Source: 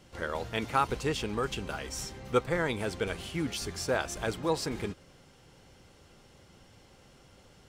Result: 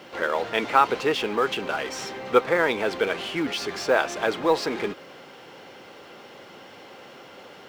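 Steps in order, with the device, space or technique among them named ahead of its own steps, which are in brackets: phone line with mismatched companding (band-pass 340–3400 Hz; companding laws mixed up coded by mu); trim +8.5 dB

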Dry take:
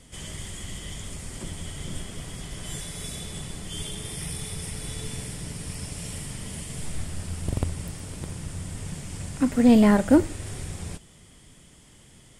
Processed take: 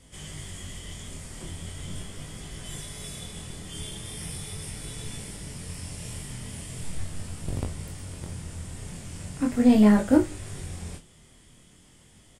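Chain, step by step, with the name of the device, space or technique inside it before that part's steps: double-tracked vocal (doubling 33 ms -12 dB; chorus 0.4 Hz, delay 19 ms, depth 6.3 ms)

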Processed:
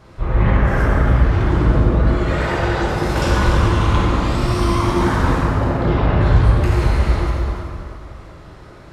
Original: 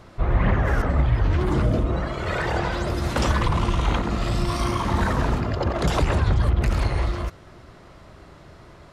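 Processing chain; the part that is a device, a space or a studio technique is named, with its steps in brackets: 1.42–2.07 s: treble shelf 5.2 kHz -8 dB; band-stop 710 Hz, Q 16; 5.38–6.21 s: distance through air 320 m; multi-head tape echo (multi-head delay 97 ms, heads first and third, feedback 40%, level -9.5 dB; wow and flutter 47 cents); plate-style reverb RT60 2.4 s, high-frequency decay 0.55×, DRR -5.5 dB; trim -2 dB

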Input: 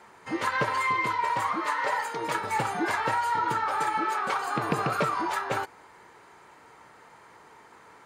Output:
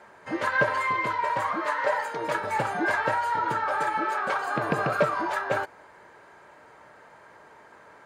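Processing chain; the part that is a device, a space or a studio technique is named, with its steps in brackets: inside a helmet (treble shelf 4 kHz -6 dB; small resonant body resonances 600/1600 Hz, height 10 dB, ringing for 35 ms)

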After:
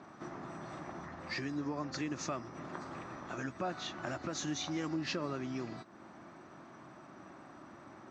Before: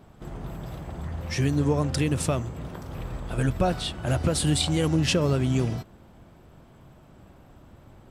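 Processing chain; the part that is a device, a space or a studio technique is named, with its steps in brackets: hearing aid with frequency lowering (knee-point frequency compression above 3.4 kHz 1.5:1; compression 2.5:1, threshold -40 dBFS, peak gain reduction 14 dB; cabinet simulation 260–6900 Hz, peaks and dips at 320 Hz +4 dB, 470 Hz -9 dB, 1.2 kHz +6 dB, 1.8 kHz +4 dB, 3.1 kHz -8 dB); trim +2.5 dB

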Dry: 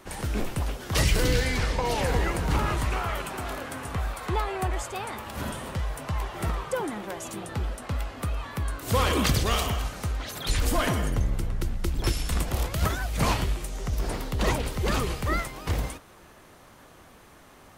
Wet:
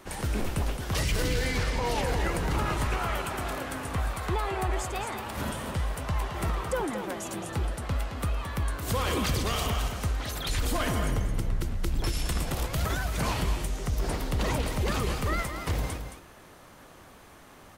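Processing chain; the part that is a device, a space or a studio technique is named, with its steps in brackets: clipper into limiter (hard clipper -13.5 dBFS, distortion -36 dB; peak limiter -19.5 dBFS, peak gain reduction 6 dB); delay 219 ms -8.5 dB

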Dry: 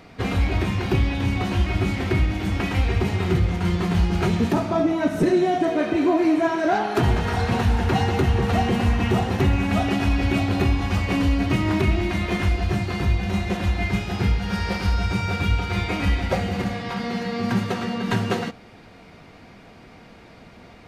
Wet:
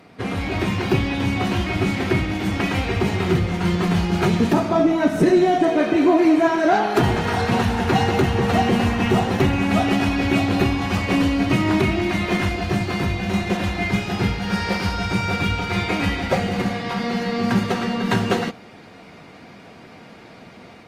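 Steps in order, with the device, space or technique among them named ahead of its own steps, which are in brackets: video call (high-pass 120 Hz 12 dB/octave; level rider gain up to 4 dB; Opus 32 kbps 48 kHz)

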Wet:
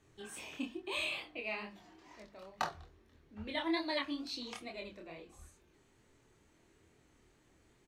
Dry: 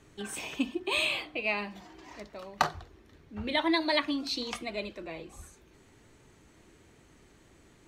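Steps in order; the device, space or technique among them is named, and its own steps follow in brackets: double-tracked vocal (doubling 25 ms -14 dB; chorus 2.3 Hz, depth 5.1 ms); hum notches 50/100/150/200 Hz; trim -6 dB

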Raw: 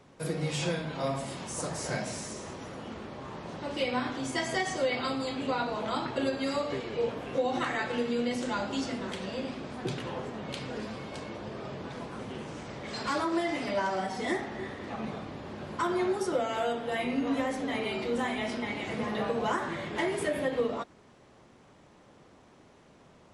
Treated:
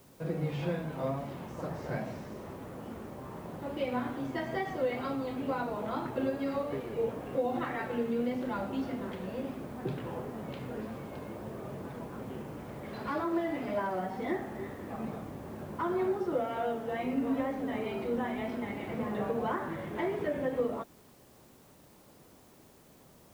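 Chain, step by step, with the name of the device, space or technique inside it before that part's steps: cassette deck with a dirty head (tape spacing loss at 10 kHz 37 dB; wow and flutter; white noise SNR 29 dB)

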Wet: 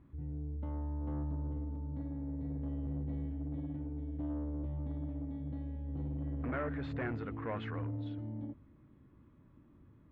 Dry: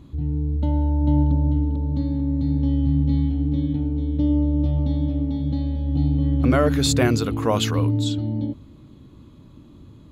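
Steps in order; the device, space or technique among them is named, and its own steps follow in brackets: overdriven synthesiser ladder filter (saturation -17 dBFS, distortion -14 dB; four-pole ladder low-pass 2.2 kHz, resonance 45%); trim -6.5 dB

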